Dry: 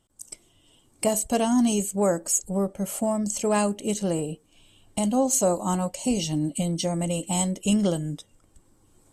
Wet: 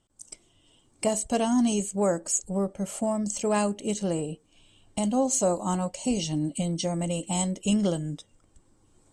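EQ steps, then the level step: LPF 9000 Hz 24 dB/oct; -2.0 dB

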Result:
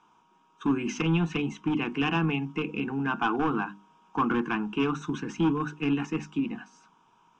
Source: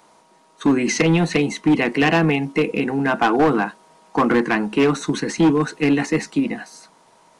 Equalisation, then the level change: LPF 3700 Hz 12 dB/oct; notches 50/100/150/200/250/300 Hz; fixed phaser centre 2900 Hz, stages 8; -5.5 dB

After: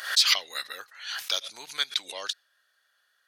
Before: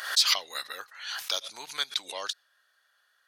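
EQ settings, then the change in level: dynamic EQ 2100 Hz, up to +5 dB, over -38 dBFS, Q 0.79; bell 990 Hz -4 dB 1 oct; 0.0 dB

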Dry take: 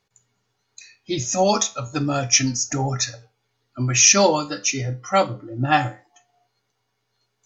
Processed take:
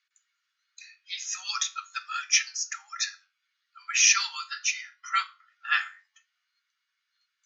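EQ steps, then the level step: steep high-pass 1300 Hz 48 dB/oct; air absorption 110 m; 0.0 dB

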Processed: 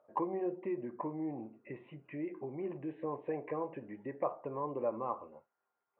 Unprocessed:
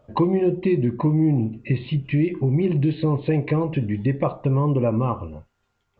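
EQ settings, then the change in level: Gaussian blur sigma 4.6 samples; HPF 610 Hz 12 dB/oct; air absorption 360 m; -5.0 dB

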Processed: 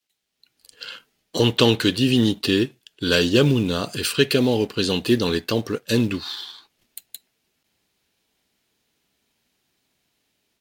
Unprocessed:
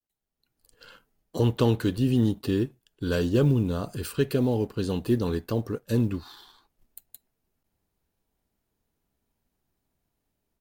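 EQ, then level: weighting filter D; +6.5 dB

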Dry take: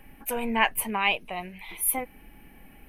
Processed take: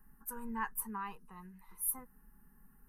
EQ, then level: fixed phaser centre 460 Hz, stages 8; fixed phaser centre 1400 Hz, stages 4; -8.5 dB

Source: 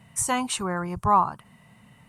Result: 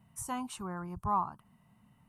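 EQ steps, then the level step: graphic EQ 125/500/2000/4000/8000 Hz -4/-9/-10/-7/-9 dB; -6.5 dB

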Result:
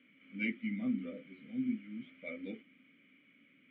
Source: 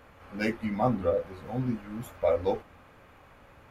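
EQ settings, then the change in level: vowel filter i; speaker cabinet 140–4000 Hz, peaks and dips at 150 Hz +8 dB, 590 Hz +4 dB, 920 Hz +3 dB, 1300 Hz +6 dB, 2200 Hz +9 dB, 3100 Hz +8 dB; bell 200 Hz +9.5 dB 0.38 oct; -1.5 dB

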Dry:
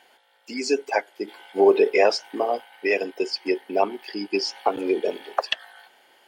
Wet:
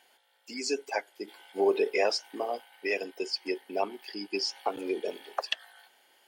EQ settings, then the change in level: high shelf 4000 Hz +9 dB; -9.0 dB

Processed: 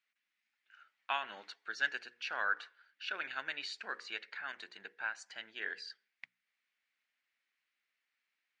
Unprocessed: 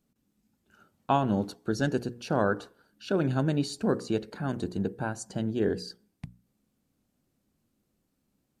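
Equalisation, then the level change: ladder band-pass 2300 Hz, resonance 55%; air absorption 65 m; +14.0 dB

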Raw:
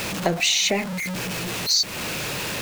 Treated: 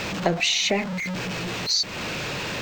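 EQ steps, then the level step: running mean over 4 samples; 0.0 dB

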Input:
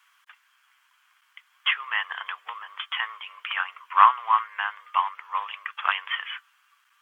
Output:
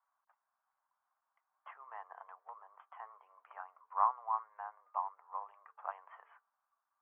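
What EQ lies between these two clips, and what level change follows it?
ladder low-pass 840 Hz, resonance 50%; notches 50/100/150/200/250/300/350/400/450 Hz; -1.0 dB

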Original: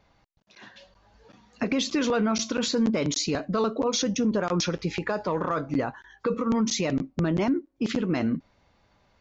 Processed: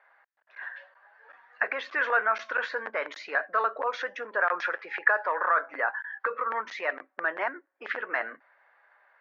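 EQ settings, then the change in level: HPF 580 Hz 24 dB/oct; synth low-pass 1700 Hz, resonance Q 5.5; air absorption 58 m; 0.0 dB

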